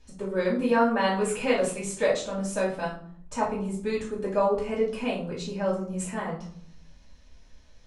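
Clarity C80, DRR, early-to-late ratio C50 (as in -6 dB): 11.5 dB, -7.5 dB, 6.5 dB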